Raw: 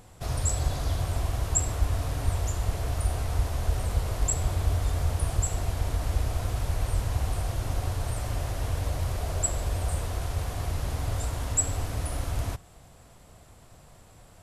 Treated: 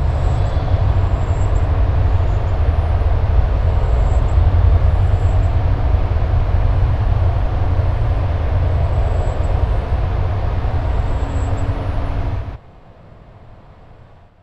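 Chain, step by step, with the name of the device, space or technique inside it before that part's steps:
high-frequency loss of the air 330 metres
reverse reverb (reversed playback; convolution reverb RT60 2.7 s, pre-delay 118 ms, DRR −7 dB; reversed playback)
level +4 dB

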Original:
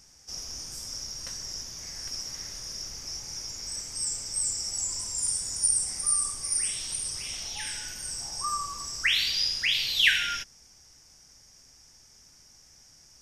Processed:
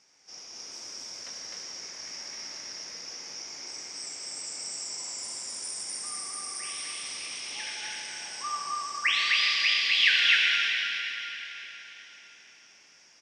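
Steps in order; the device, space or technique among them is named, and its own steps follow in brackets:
station announcement (band-pass filter 310–4,900 Hz; parametric band 2,300 Hz +4.5 dB 0.46 octaves; loudspeakers that aren't time-aligned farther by 23 metres −10 dB, 88 metres −1 dB; convolution reverb RT60 4.1 s, pre-delay 94 ms, DRR 0.5 dB)
level −3.5 dB

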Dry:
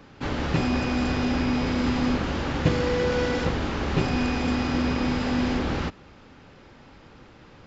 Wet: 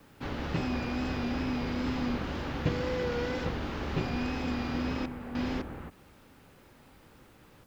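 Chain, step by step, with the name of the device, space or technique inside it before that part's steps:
worn cassette (low-pass filter 6,200 Hz 12 dB per octave; tape wow and flutter; tape dropouts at 0:05.06/0:05.62/0:07.64, 288 ms −7 dB; white noise bed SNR 36 dB)
level −7.5 dB

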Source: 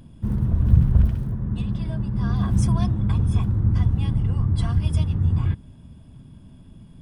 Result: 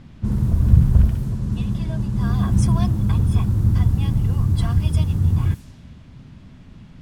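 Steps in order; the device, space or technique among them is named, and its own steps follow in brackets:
cassette deck with a dynamic noise filter (white noise bed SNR 33 dB; low-pass that shuts in the quiet parts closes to 2,500 Hz, open at −18 dBFS)
level +2.5 dB

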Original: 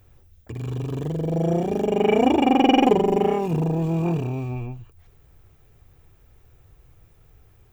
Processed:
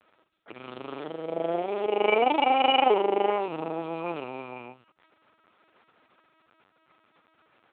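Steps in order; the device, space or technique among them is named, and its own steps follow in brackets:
talking toy (linear-prediction vocoder at 8 kHz pitch kept; high-pass filter 570 Hz 12 dB per octave; parametric band 1,300 Hz +8 dB 0.23 octaves)
level +3 dB

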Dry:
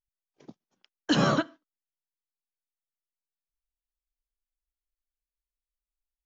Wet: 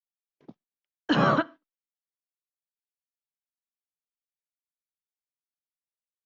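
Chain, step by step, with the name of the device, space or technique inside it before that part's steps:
dynamic equaliser 1,100 Hz, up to +5 dB, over −37 dBFS, Q 0.89
hearing-loss simulation (low-pass filter 3,200 Hz 12 dB per octave; downward expander −52 dBFS)

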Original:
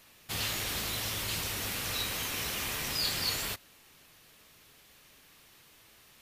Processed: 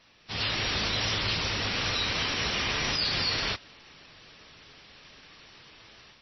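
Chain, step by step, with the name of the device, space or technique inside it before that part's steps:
low-bitrate web radio (automatic gain control gain up to 8.5 dB; brickwall limiter −17.5 dBFS, peak gain reduction 6.5 dB; MP3 24 kbit/s 22,050 Hz)

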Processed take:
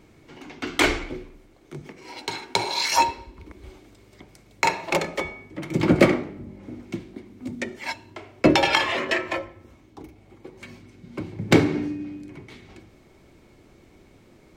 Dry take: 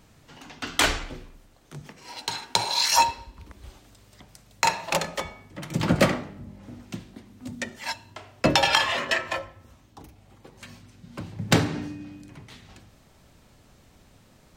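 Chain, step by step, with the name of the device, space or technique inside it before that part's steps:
inside a helmet (high-shelf EQ 4,700 Hz −6 dB; hollow resonant body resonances 350/2,200 Hz, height 12 dB, ringing for 25 ms)

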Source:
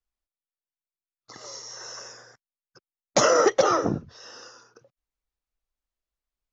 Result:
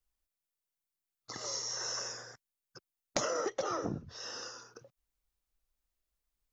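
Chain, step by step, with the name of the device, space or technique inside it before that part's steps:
ASMR close-microphone chain (low-shelf EQ 160 Hz +4.5 dB; downward compressor 8 to 1, threshold −32 dBFS, peak gain reduction 17.5 dB; high-shelf EQ 6,800 Hz +7 dB)

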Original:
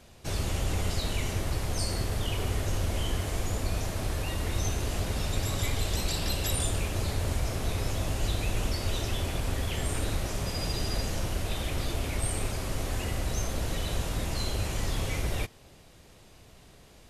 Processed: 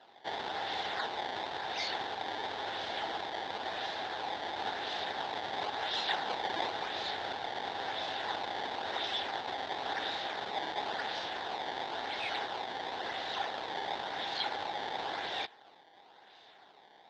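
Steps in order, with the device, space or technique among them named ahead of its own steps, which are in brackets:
circuit-bent sampling toy (sample-and-hold swept by an LFO 19×, swing 160% 0.96 Hz; loudspeaker in its box 560–4,600 Hz, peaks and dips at 570 Hz −4 dB, 810 Hz +10 dB, 1,200 Hz −6 dB, 1,700 Hz +5 dB, 2,500 Hz −6 dB, 3,600 Hz +10 dB)

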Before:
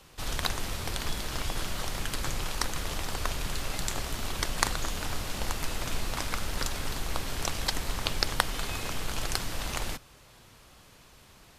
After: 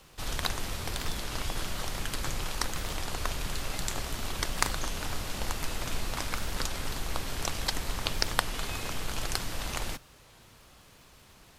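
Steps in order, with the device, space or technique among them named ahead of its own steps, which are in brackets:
warped LP (wow of a warped record 33 1/3 rpm, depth 100 cents; surface crackle 110 per second −50 dBFS; pink noise bed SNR 41 dB)
level −1 dB

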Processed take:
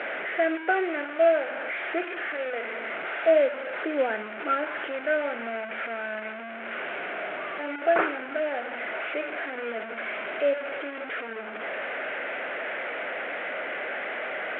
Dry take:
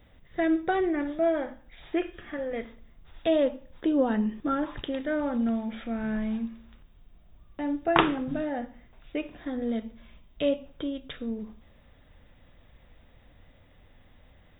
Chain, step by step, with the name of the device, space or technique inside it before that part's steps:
digital answering machine (band-pass filter 310–3,200 Hz; linear delta modulator 16 kbit/s, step −29.5 dBFS; loudspeaker in its box 390–3,400 Hz, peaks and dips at 400 Hz +4 dB, 640 Hz +7 dB, 1,000 Hz −5 dB, 1,500 Hz +9 dB, 2,200 Hz +6 dB)

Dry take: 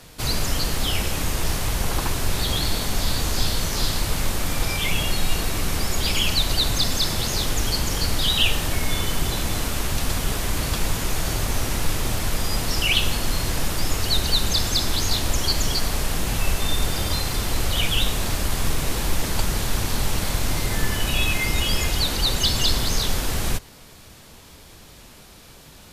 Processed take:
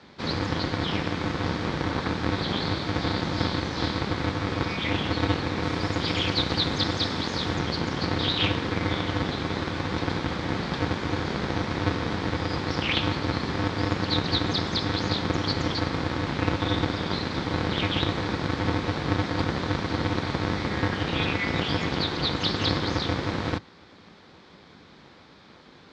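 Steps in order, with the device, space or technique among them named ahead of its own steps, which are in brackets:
0:05.63–0:07.56: high-shelf EQ 7,700 Hz +7.5 dB
ring modulator pedal into a guitar cabinet (ring modulator with a square carrier 100 Hz; loudspeaker in its box 110–4,100 Hz, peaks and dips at 120 Hz −9 dB, 650 Hz −5 dB, 2,800 Hz −8 dB)
level −1.5 dB

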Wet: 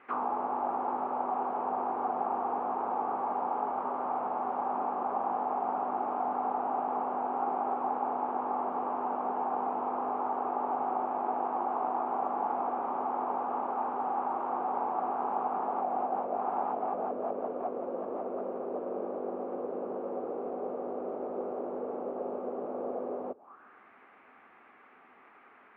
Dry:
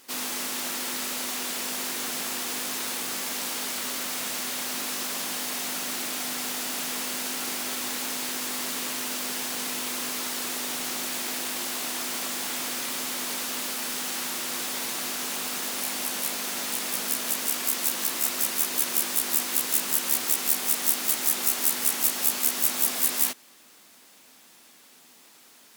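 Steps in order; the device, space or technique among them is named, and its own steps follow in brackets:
envelope filter bass rig (envelope-controlled low-pass 530–2,100 Hz down, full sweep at −24 dBFS; loudspeaker in its box 88–2,400 Hz, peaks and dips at 89 Hz +6 dB, 150 Hz −8 dB, 410 Hz +6 dB, 770 Hz +7 dB, 1,200 Hz +8 dB, 1,900 Hz −9 dB)
level −3 dB

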